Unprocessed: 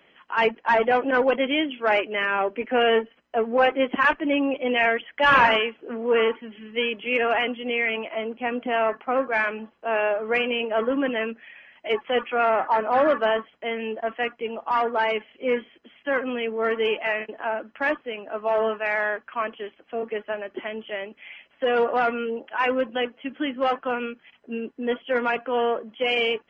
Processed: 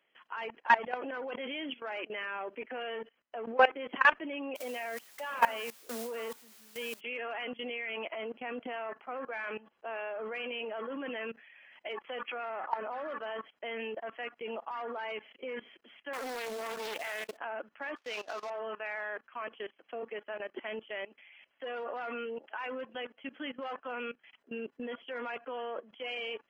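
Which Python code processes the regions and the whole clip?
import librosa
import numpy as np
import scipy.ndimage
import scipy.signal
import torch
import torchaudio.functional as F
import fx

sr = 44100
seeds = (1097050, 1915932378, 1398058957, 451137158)

y = fx.cheby_ripple_highpass(x, sr, hz=160.0, ripple_db=6, at=(4.55, 6.99), fade=0.02)
y = fx.dmg_noise_colour(y, sr, seeds[0], colour='white', level_db=-42.0, at=(4.55, 6.99), fade=0.02)
y = fx.chain(y, sr, fx.low_shelf(hz=77.0, db=-6.5),
    fx.quant_companded(bits=4),
    fx.doppler_dist(depth_ms=0.54), at=(16.13, 17.37))
y = fx.chain(y, sr, fx.cvsd(bps=32000),
    fx.highpass(hz=670.0, slope=6),
    fx.leveller(passes=2), at=(17.96, 18.5))
y = fx.low_shelf(y, sr, hz=270.0, db=-12.0)
y = fx.level_steps(y, sr, step_db=19)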